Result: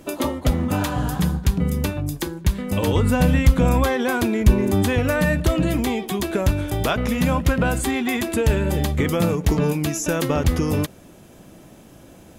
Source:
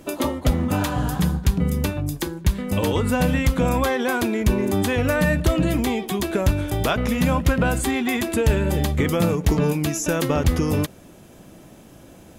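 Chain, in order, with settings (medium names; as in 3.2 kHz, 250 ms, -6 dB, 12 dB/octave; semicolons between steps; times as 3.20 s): 2.87–4.99 s: bass shelf 140 Hz +7.5 dB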